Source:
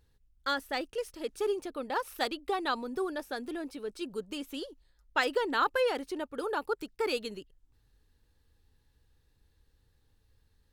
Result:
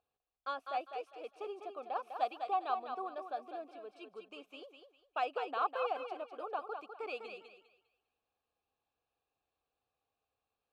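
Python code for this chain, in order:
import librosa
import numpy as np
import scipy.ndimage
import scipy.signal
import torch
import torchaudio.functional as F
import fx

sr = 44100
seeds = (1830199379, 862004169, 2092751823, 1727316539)

y = fx.vowel_filter(x, sr, vowel='a')
y = fx.echo_thinned(y, sr, ms=201, feedback_pct=29, hz=400.0, wet_db=-6.0)
y = y * 10.0 ** (4.0 / 20.0)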